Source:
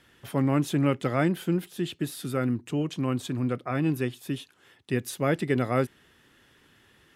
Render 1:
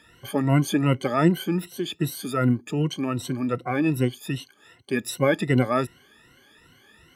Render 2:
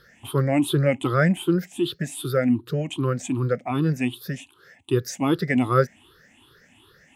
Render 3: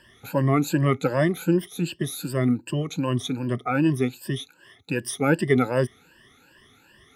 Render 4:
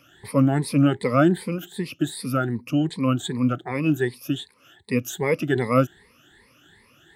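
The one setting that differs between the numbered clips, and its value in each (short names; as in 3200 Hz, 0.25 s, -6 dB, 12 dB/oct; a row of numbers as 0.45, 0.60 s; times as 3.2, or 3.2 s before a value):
moving spectral ripple, ripples per octave: 2, 0.6, 1.3, 0.91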